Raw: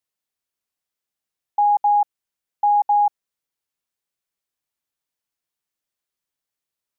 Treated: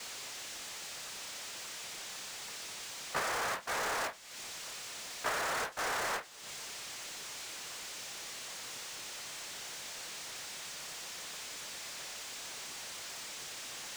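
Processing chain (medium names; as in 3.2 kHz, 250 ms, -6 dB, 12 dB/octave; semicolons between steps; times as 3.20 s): tracing distortion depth 0.26 ms; high-pass 690 Hz 6 dB/octave; band-stop 870 Hz, Q 12; in parallel at 0 dB: compressor with a negative ratio -28 dBFS, ratio -0.5; on the sum: inverted gate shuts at -24 dBFS, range -30 dB; granular stretch 2×, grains 59 ms; noise-vocoded speech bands 3; power-law waveshaper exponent 0.35; on a send at -20.5 dB: reverberation, pre-delay 38 ms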